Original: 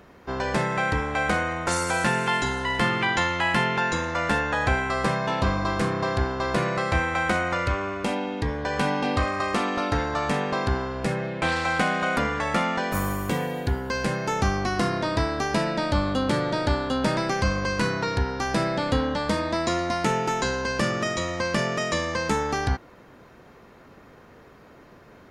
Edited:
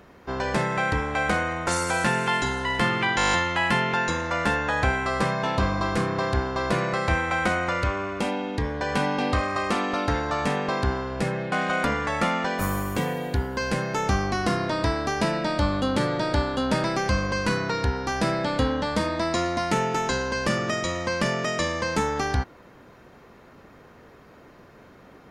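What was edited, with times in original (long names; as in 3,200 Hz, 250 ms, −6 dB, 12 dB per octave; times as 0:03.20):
0:03.17: stutter 0.02 s, 9 plays
0:11.36–0:11.85: remove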